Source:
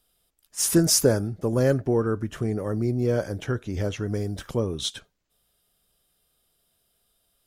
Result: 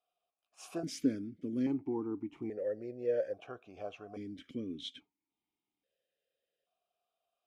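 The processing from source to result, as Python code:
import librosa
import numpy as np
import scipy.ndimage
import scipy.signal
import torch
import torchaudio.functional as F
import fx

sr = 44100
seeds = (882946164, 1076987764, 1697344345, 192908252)

y = fx.vowel_held(x, sr, hz=1.2)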